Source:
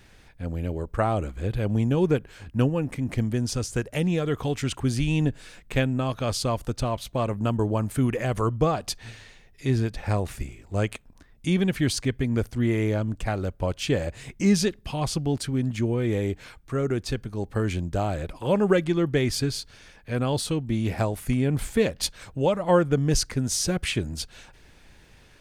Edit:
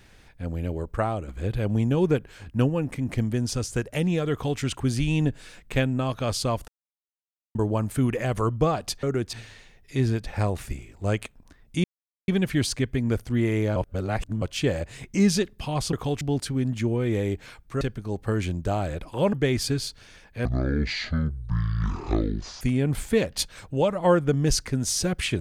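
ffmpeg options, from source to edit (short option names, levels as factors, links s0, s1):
-filter_complex "[0:a]asplit=15[s0][s1][s2][s3][s4][s5][s6][s7][s8][s9][s10][s11][s12][s13][s14];[s0]atrim=end=1.28,asetpts=PTS-STARTPTS,afade=t=out:st=0.91:d=0.37:silence=0.421697[s15];[s1]atrim=start=1.28:end=6.68,asetpts=PTS-STARTPTS,afade=t=in:d=0.004:c=hsin:silence=0.421697,afade=t=out:st=5.396:d=0.004:c=hsin[s16];[s2]atrim=start=6.68:end=7.55,asetpts=PTS-STARTPTS,volume=0[s17];[s3]atrim=start=7.55:end=9.032,asetpts=PTS-STARTPTS,afade=t=in:d=0.004:c=hsin[s18];[s4]atrim=start=16.788:end=17.092[s19];[s5]atrim=start=9.028:end=11.54,asetpts=PTS-STARTPTS,afade=t=out:st=2.508:d=0.004:c=hsin,apad=pad_dur=0.44[s20];[s6]atrim=start=11.54:end=13.022,asetpts=PTS-STARTPTS,afade=t=in:d=0.004:c=hsin[s21];[s7]atrim=start=13.018:end=13.682,asetpts=PTS-STARTPTS,areverse[s22];[s8]atrim=start=13.678:end=15.192[s23];[s9]atrim=start=4.318:end=4.602[s24];[s10]atrim=start=15.188:end=16.792[s25];[s11]atrim=start=17.088:end=18.612[s26];[s12]atrim=start=19.048:end=20.174[s27];[s13]atrim=start=20.17:end=21.25,asetpts=PTS-STARTPTS,asetrate=22050,aresample=44100[s28];[s14]atrim=start=21.246[s29];[s15][s16][s17][s18]concat=n=4:v=0:a=1[s30];[s30][s19]acrossfade=d=0.004:c1=hsin:c2=hsin[s31];[s20][s21]concat=n=2:v=0:a=1[s32];[s31][s32]acrossfade=d=0.004:c1=hsin:c2=hsin[s33];[s33][s22]acrossfade=d=0.004:c1=hsin:c2=hsin[s34];[s34][s23]acrossfade=d=0.004:c1=hsin:c2=hsin[s35];[s35][s24]acrossfade=d=0.004:c1=hsin:c2=hsin[s36];[s36][s25]acrossfade=d=0.004:c1=hsin:c2=hsin[s37];[s37][s26]acrossfade=d=0.004:c1=hsin:c2=hsin[s38];[s38][s27]acrossfade=d=0.004:c1=hsin:c2=hsin[s39];[s39][s28]acrossfade=d=0.004:c1=hsin:c2=hsin[s40];[s40][s29]acrossfade=d=0.004:c1=hsin:c2=hsin"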